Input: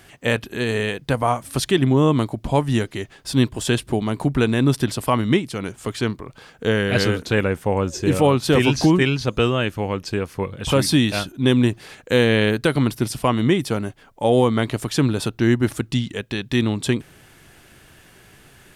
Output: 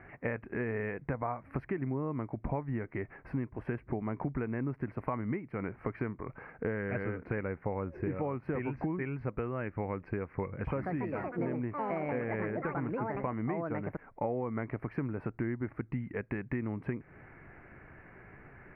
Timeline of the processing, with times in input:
0:10.64–0:14.87: delay with pitch and tempo change per echo 159 ms, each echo +5 semitones, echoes 3
whole clip: downward compressor 12 to 1, threshold −28 dBFS; elliptic low-pass filter 2,200 Hz, stop band 40 dB; level −2 dB

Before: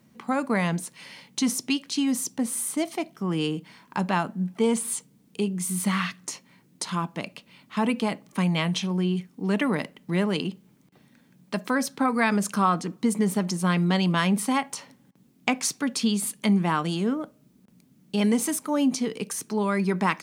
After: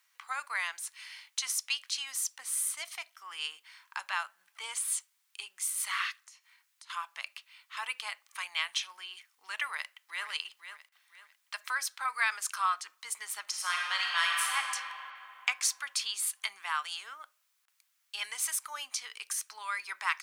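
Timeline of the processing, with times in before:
0:06.19–0:06.90: downward compressor 4 to 1, threshold −52 dBFS
0:09.68–0:10.26: delay throw 500 ms, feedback 35%, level −9.5 dB
0:13.42–0:14.56: thrown reverb, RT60 3 s, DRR −2 dB
whole clip: high-pass filter 1,200 Hz 24 dB per octave; level −2 dB

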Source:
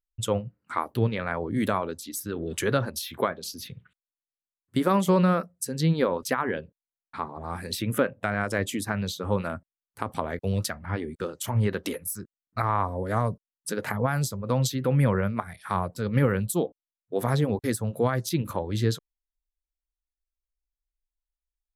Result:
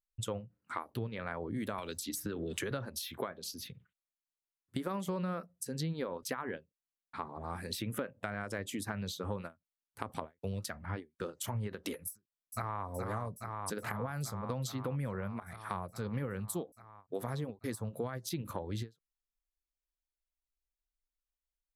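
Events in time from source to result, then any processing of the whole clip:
0:01.78–0:02.71: multiband upward and downward compressor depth 100%
0:12.10–0:12.86: delay throw 420 ms, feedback 80%, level −7.5 dB
whole clip: downward compressor, threshold −28 dBFS; every ending faded ahead of time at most 320 dB per second; level −5.5 dB

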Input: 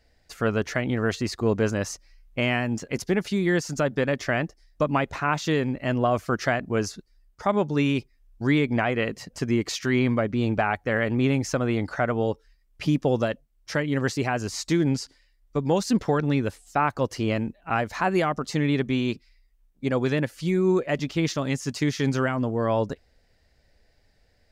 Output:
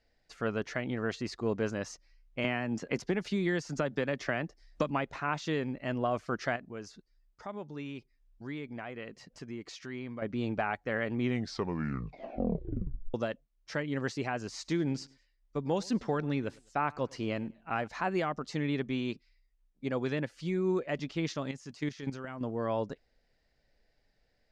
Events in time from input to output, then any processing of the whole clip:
0:02.44–0:04.90: multiband upward and downward compressor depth 100%
0:06.56–0:10.22: downward compressor 1.5 to 1, threshold −45 dBFS
0:11.13: tape stop 2.01 s
0:14.50–0:17.88: repeating echo 103 ms, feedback 33%, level −24 dB
0:21.51–0:22.41: output level in coarse steps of 11 dB
whole clip: low-pass filter 6,200 Hz 12 dB per octave; parametric band 77 Hz −11 dB 0.72 octaves; level −8 dB

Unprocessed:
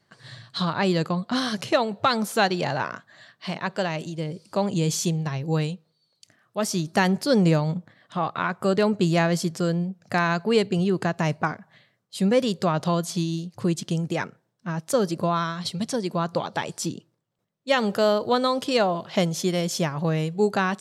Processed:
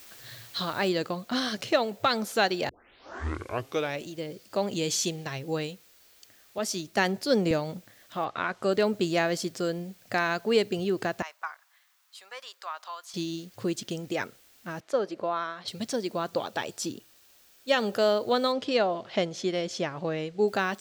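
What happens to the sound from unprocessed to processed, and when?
0:00.89: noise floor change −47 dB −56 dB
0:02.69: tape start 1.37 s
0:04.71–0:05.39: parametric band 3,400 Hz +3.5 dB 2.6 octaves
0:06.58–0:07.51: multiband upward and downward expander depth 40%
0:08.24–0:08.70: low-pass filter 4,100 Hz → 10,000 Hz
0:11.22–0:13.14: four-pole ladder high-pass 900 Hz, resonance 50%
0:14.80–0:15.68: resonant band-pass 900 Hz, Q 0.55
0:16.29–0:17.96: notch filter 2,100 Hz
0:18.52–0:20.48: high-frequency loss of the air 95 metres
whole clip: graphic EQ with 15 bands 160 Hz −12 dB, 1,000 Hz −5 dB, 10,000 Hz −5 dB; level −1.5 dB

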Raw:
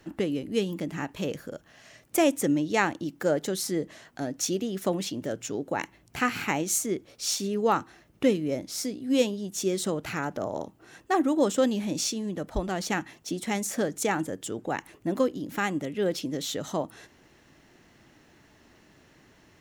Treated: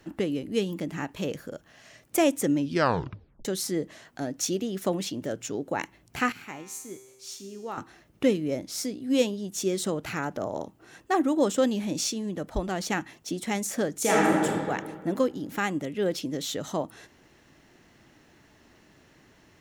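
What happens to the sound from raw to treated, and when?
0:02.57: tape stop 0.88 s
0:06.32–0:07.78: tuned comb filter 130 Hz, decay 1.3 s, mix 80%
0:13.99–0:14.44: thrown reverb, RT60 1.9 s, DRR −6 dB

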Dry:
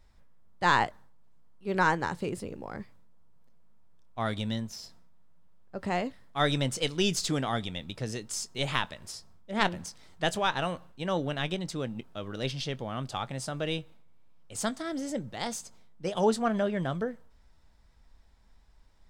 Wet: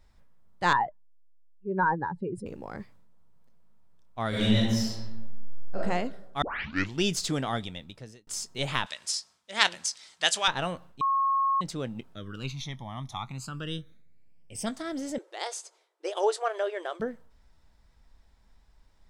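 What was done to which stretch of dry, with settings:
0:00.73–0:02.46: expanding power law on the bin magnitudes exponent 2.1
0:04.29–0:05.76: thrown reverb, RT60 1.1 s, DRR −10 dB
0:06.42: tape start 0.61 s
0:07.54–0:08.27: fade out
0:08.86–0:10.48: meter weighting curve ITU-R 468
0:11.01–0:11.61: beep over 1,090 Hz −22 dBFS
0:12.14–0:14.66: all-pass phaser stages 12, 0.45 Hz → 0.15 Hz, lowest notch 460–1,500 Hz
0:15.18–0:17.00: linear-phase brick-wall band-pass 320–12,000 Hz

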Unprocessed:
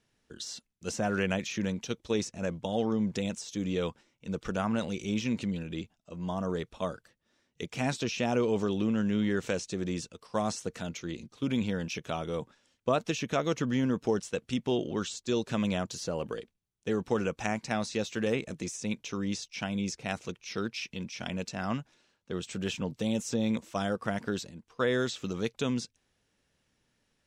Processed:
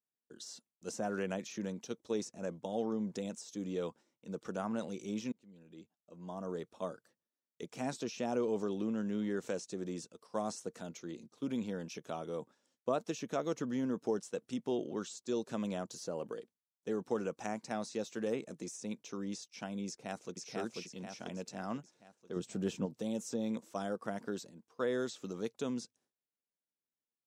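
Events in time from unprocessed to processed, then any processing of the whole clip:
0:05.32–0:06.68: fade in
0:19.87–0:20.41: delay throw 490 ms, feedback 50%, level −1 dB
0:22.36–0:22.86: low-shelf EQ 430 Hz +8.5 dB
whole clip: noise gate with hold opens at −58 dBFS; high-pass filter 210 Hz 12 dB per octave; parametric band 2,600 Hz −9.5 dB 1.7 octaves; level −4.5 dB

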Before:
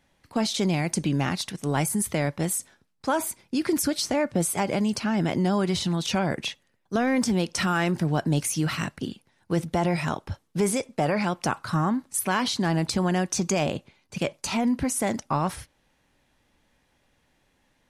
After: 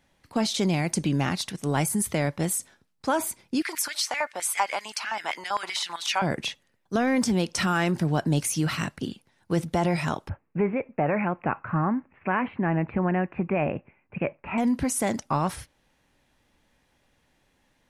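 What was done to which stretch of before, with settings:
0:03.62–0:06.22: auto-filter high-pass square 7.7 Hz 950–2,000 Hz
0:10.29–0:14.58: Chebyshev low-pass filter 2,600 Hz, order 6

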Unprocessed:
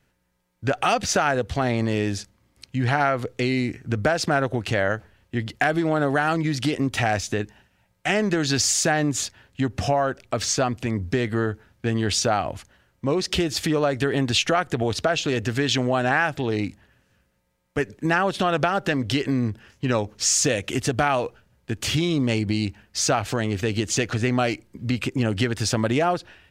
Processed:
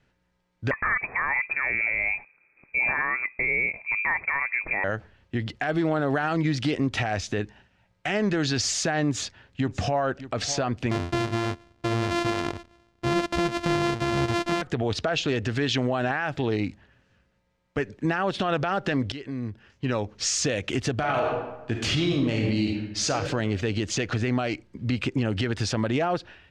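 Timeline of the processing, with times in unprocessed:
0:00.71–0:04.84: voice inversion scrambler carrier 2,500 Hz
0:09.06–0:10.20: delay throw 600 ms, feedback 10%, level −16.5 dB
0:10.91–0:14.62: samples sorted by size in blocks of 128 samples
0:19.12–0:20.24: fade in, from −16 dB
0:20.94–0:23.11: thrown reverb, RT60 0.99 s, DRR 1.5 dB
whole clip: low-pass filter 5,100 Hz 12 dB per octave; brickwall limiter −16 dBFS

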